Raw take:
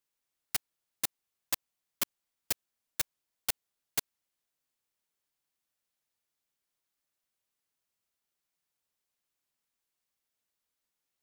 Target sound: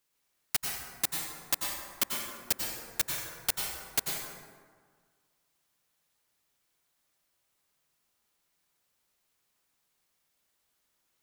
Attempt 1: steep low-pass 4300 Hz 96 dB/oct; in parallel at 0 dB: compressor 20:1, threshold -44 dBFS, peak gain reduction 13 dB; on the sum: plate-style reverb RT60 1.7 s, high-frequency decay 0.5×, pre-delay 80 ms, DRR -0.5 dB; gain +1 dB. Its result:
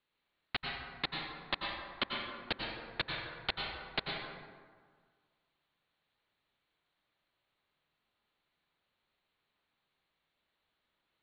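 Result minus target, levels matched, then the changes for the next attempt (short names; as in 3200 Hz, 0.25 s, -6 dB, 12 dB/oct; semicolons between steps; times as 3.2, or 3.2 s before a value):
4000 Hz band +5.5 dB
remove: steep low-pass 4300 Hz 96 dB/oct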